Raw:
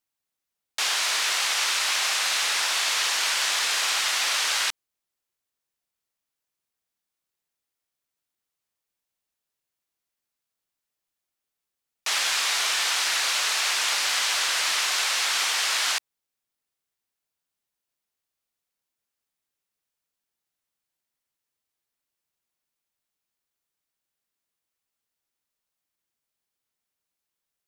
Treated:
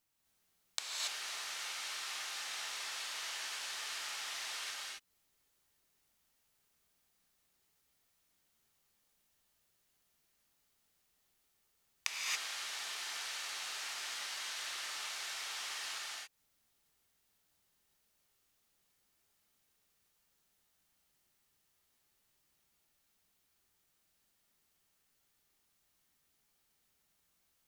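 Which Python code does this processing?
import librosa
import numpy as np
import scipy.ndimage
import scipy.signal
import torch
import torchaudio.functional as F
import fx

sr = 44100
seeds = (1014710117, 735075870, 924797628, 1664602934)

y = fx.gate_flip(x, sr, shuts_db=-18.0, range_db=-26)
y = fx.bass_treble(y, sr, bass_db=5, treble_db=0)
y = fx.rev_gated(y, sr, seeds[0], gate_ms=300, shape='rising', drr_db=-4.5)
y = F.gain(torch.from_numpy(y), 2.5).numpy()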